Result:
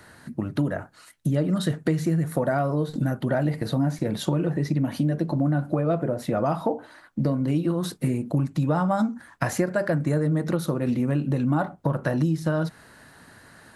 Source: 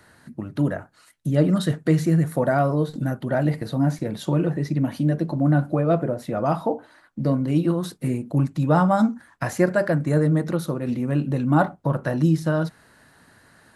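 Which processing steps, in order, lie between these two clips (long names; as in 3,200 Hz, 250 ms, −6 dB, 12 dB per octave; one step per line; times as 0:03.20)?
downward compressor, threshold −24 dBFS, peak gain reduction 11.5 dB
level +4 dB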